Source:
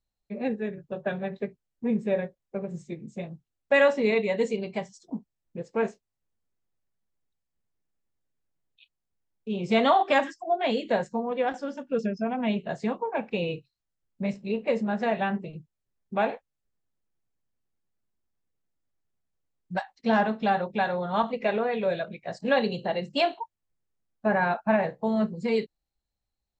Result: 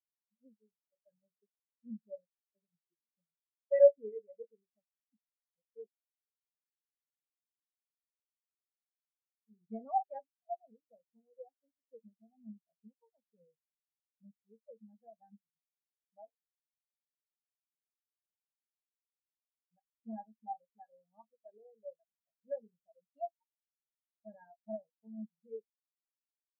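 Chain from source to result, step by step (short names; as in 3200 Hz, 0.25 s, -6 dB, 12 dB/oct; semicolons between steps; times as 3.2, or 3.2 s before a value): 10.71–11.19 bell 3100 Hz -10 dB 2.3 oct; spectral expander 4:1; gain -3 dB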